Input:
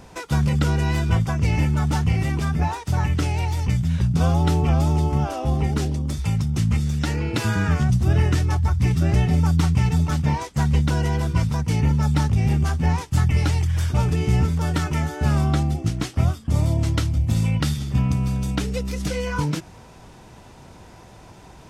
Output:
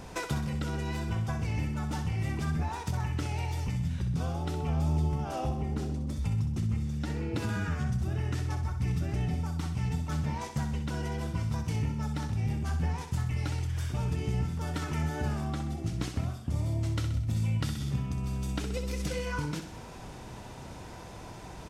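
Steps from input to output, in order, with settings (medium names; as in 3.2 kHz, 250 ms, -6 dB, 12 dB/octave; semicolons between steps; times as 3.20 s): 5.49–7.49 s: tilt shelf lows +3.5 dB; compression 5:1, threshold -30 dBFS, peak gain reduction 16 dB; feedback delay 64 ms, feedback 53%, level -8 dB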